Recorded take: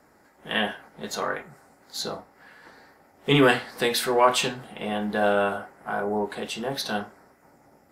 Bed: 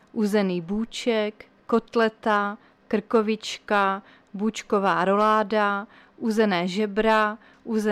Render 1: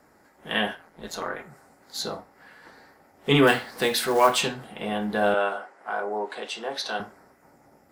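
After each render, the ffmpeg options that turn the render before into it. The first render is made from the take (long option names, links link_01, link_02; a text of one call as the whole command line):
ffmpeg -i in.wav -filter_complex "[0:a]asplit=3[link_01][link_02][link_03];[link_01]afade=type=out:start_time=0.74:duration=0.02[link_04];[link_02]tremolo=f=170:d=0.71,afade=type=in:start_time=0.74:duration=0.02,afade=type=out:start_time=1.38:duration=0.02[link_05];[link_03]afade=type=in:start_time=1.38:duration=0.02[link_06];[link_04][link_05][link_06]amix=inputs=3:normalize=0,asettb=1/sr,asplit=3[link_07][link_08][link_09];[link_07]atrim=end=3.474[link_10];[link_08]atrim=start=3.47:end=4.39,asetpts=PTS-STARTPTS,afade=type=in:duration=0.004:curve=qsin,afade=type=out:start_time=0.916:duration=0.004:curve=qsin,acrusher=bits=5:mode=log:mix=0:aa=0.000001[link_11];[link_09]atrim=start=4.386[link_12];[link_10][link_11]acrossfade=duration=0.004:curve1=hsin:curve2=qsin[link_13];[link_13][link_12]acrossfade=duration=0.004:curve1=qsin:curve2=hsin,asettb=1/sr,asplit=3[link_14][link_15][link_16];[link_14]atrim=end=5.344[link_17];[link_15]atrim=start=5.34:end=7,asetpts=PTS-STARTPTS,afade=type=in:duration=0.004:curve=qsin,afade=type=out:start_time=1.656:duration=0.004:curve=qsin,highpass=420,lowpass=7300[link_18];[link_16]atrim=start=6.996[link_19];[link_17][link_18]acrossfade=duration=0.004:curve1=hsin:curve2=qsin[link_20];[link_20][link_19]acrossfade=duration=0.004:curve1=qsin:curve2=hsin" out.wav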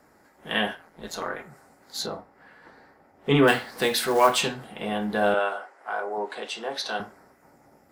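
ffmpeg -i in.wav -filter_complex "[0:a]asettb=1/sr,asplit=3[link_01][link_02][link_03];[link_01]atrim=end=2.064[link_04];[link_02]atrim=start=2.06:end=3.48,asetpts=PTS-STARTPTS,afade=type=in:duration=0.004:curve=qsin,afade=type=out:start_time=1.416:duration=0.004:curve=qsin,highshelf=frequency=3300:gain=-10.5[link_05];[link_03]atrim=start=3.476[link_06];[link_04][link_05]acrossfade=duration=0.004:curve1=hsin:curve2=qsin[link_07];[link_07][link_06]acrossfade=duration=0.004:curve1=qsin:curve2=hsin,asettb=1/sr,asplit=3[link_08][link_09][link_10];[link_08]atrim=end=5.394[link_11];[link_09]atrim=start=5.39:end=6.18,asetpts=PTS-STARTPTS,afade=type=in:duration=0.004:curve=qsin,afade=type=out:start_time=0.786:duration=0.004:curve=qsin,equalizer=frequency=160:width=1:gain=-11[link_12];[link_10]atrim=start=6.176[link_13];[link_11][link_12]acrossfade=duration=0.004:curve1=hsin:curve2=qsin[link_14];[link_14][link_13]acrossfade=duration=0.004:curve1=qsin:curve2=hsin" out.wav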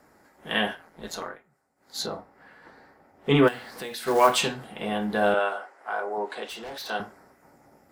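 ffmpeg -i in.wav -filter_complex "[0:a]asplit=3[link_01][link_02][link_03];[link_01]afade=type=out:start_time=3.47:duration=0.02[link_04];[link_02]acompressor=threshold=-38dB:ratio=2.5:attack=3.2:release=140:knee=1:detection=peak,afade=type=in:start_time=3.47:duration=0.02,afade=type=out:start_time=4.06:duration=0.02[link_05];[link_03]afade=type=in:start_time=4.06:duration=0.02[link_06];[link_04][link_05][link_06]amix=inputs=3:normalize=0,asettb=1/sr,asplit=3[link_07][link_08][link_09];[link_07]atrim=end=6.484[link_10];[link_08]atrim=start=6.48:end=6.9,asetpts=PTS-STARTPTS,afade=type=in:duration=0.004:curve=qsin,afade=type=out:start_time=0.416:duration=0.004:curve=qsin,volume=35.5dB,asoftclip=hard,volume=-35.5dB[link_11];[link_09]atrim=start=6.896[link_12];[link_10][link_11]acrossfade=duration=0.004:curve1=hsin:curve2=qsin[link_13];[link_13][link_12]acrossfade=duration=0.004:curve1=qsin:curve2=hsin,asplit=3[link_14][link_15][link_16];[link_14]atrim=end=1.4,asetpts=PTS-STARTPTS,afade=type=out:start_time=1.14:duration=0.26:silence=0.112202[link_17];[link_15]atrim=start=1.4:end=1.75,asetpts=PTS-STARTPTS,volume=-19dB[link_18];[link_16]atrim=start=1.75,asetpts=PTS-STARTPTS,afade=type=in:duration=0.26:silence=0.112202[link_19];[link_17][link_18][link_19]concat=n=3:v=0:a=1" out.wav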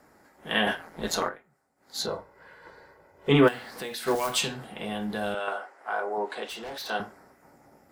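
ffmpeg -i in.wav -filter_complex "[0:a]asplit=3[link_01][link_02][link_03];[link_01]afade=type=out:start_time=0.66:duration=0.02[link_04];[link_02]acontrast=87,afade=type=in:start_time=0.66:duration=0.02,afade=type=out:start_time=1.28:duration=0.02[link_05];[link_03]afade=type=in:start_time=1.28:duration=0.02[link_06];[link_04][link_05][link_06]amix=inputs=3:normalize=0,asettb=1/sr,asplit=3[link_07][link_08][link_09];[link_07]atrim=end=2.084[link_10];[link_08]atrim=start=2.08:end=3.29,asetpts=PTS-STARTPTS,afade=type=in:duration=0.004:curve=qsin,afade=type=out:start_time=1.206:duration=0.004:curve=qsin,aecho=1:1:2:0.65,atrim=end_sample=53361[link_11];[link_09]atrim=start=3.286[link_12];[link_10][link_11]acrossfade=duration=0.004:curve1=hsin:curve2=qsin[link_13];[link_13][link_12]acrossfade=duration=0.004:curve1=qsin:curve2=hsin,asettb=1/sr,asplit=3[link_14][link_15][link_16];[link_14]atrim=end=4.154[link_17];[link_15]atrim=start=4.15:end=5.48,asetpts=PTS-STARTPTS,afade=type=in:duration=0.004:curve=qsin,afade=type=out:start_time=1.326:duration=0.004:curve=qsin,acrossover=split=170|3000[link_18][link_19][link_20];[link_19]acompressor=threshold=-35dB:ratio=2:attack=3.2:release=140:knee=2.83:detection=peak[link_21];[link_18][link_21][link_20]amix=inputs=3:normalize=0[link_22];[link_16]atrim=start=5.476[link_23];[link_17][link_22]acrossfade=duration=0.004:curve1=hsin:curve2=qsin[link_24];[link_24][link_23]acrossfade=duration=0.004:curve1=qsin:curve2=hsin" out.wav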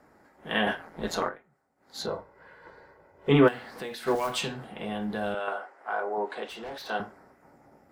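ffmpeg -i in.wav -af "highshelf=frequency=3700:gain=-9.5" out.wav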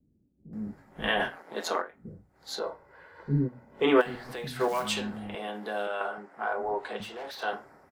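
ffmpeg -i in.wav -filter_complex "[0:a]acrossover=split=260[link_01][link_02];[link_02]adelay=530[link_03];[link_01][link_03]amix=inputs=2:normalize=0" out.wav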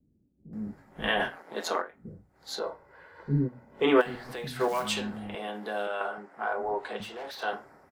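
ffmpeg -i in.wav -af anull out.wav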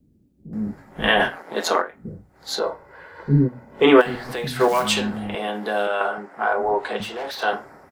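ffmpeg -i in.wav -af "volume=9.5dB,alimiter=limit=-3dB:level=0:latency=1" out.wav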